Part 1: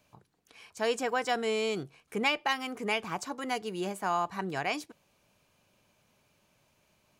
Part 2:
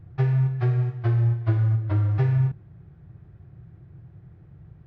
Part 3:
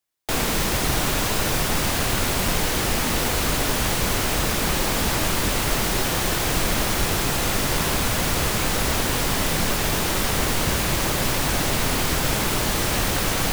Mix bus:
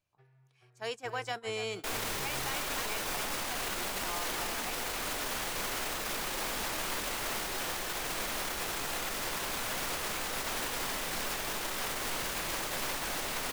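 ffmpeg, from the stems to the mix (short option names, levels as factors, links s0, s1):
-filter_complex "[0:a]volume=0.794,asplit=2[s0][s1];[s1]volume=0.188[s2];[1:a]volume=0.141[s3];[2:a]adelay=1550,volume=0.794[s4];[s0][s4]amix=inputs=2:normalize=0,acrossover=split=94|2800[s5][s6][s7];[s5]acompressor=threshold=0.0178:ratio=4[s8];[s6]acompressor=threshold=0.0398:ratio=4[s9];[s7]acompressor=threshold=0.0224:ratio=4[s10];[s8][s9][s10]amix=inputs=3:normalize=0,alimiter=limit=0.0668:level=0:latency=1:release=25,volume=1[s11];[s2]aecho=0:1:284:1[s12];[s3][s11][s12]amix=inputs=3:normalize=0,agate=range=0.178:threshold=0.0224:ratio=16:detection=peak,equalizer=f=97:w=0.36:g=-13.5"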